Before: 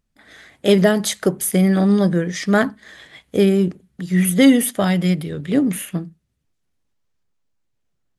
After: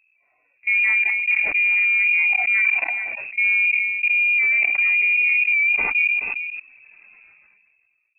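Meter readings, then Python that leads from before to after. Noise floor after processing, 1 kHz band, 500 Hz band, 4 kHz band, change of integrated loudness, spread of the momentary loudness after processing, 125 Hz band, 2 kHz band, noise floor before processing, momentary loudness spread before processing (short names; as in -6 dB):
-66 dBFS, -8.5 dB, under -25 dB, under -10 dB, +1.0 dB, 9 LU, under -35 dB, +14.0 dB, -72 dBFS, 11 LU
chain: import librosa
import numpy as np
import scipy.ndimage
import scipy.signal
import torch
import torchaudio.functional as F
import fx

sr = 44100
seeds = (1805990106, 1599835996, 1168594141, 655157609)

y = fx.hpss_only(x, sr, part='harmonic')
y = y + 10.0 ** (-23.5 / 20.0) * np.pad(y, (int(427 * sr / 1000.0), 0))[:len(y)]
y = fx.transient(y, sr, attack_db=-11, sustain_db=2)
y = fx.clip_asym(y, sr, top_db=-13.0, bottom_db=-10.0)
y = fx.tilt_shelf(y, sr, db=9.0, hz=760.0)
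y = fx.level_steps(y, sr, step_db=24)
y = fx.freq_invert(y, sr, carrier_hz=2600)
y = fx.sustainer(y, sr, db_per_s=27.0)
y = y * librosa.db_to_amplitude(6.0)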